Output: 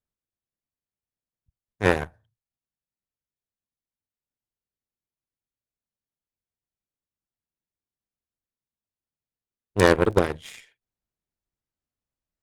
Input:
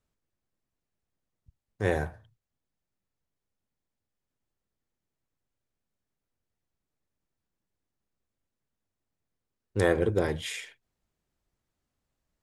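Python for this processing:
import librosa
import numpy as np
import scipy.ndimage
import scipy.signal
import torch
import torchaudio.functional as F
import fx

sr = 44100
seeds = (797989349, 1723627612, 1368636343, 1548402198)

y = fx.cheby_harmonics(x, sr, harmonics=(2, 7), levels_db=(-11, -18), full_scale_db=-10.0)
y = fx.dmg_crackle(y, sr, seeds[0], per_s=fx.line((9.82, 32.0), (10.35, 13.0)), level_db=-44.0, at=(9.82, 10.35), fade=0.02)
y = y * 10.0 ** (8.0 / 20.0)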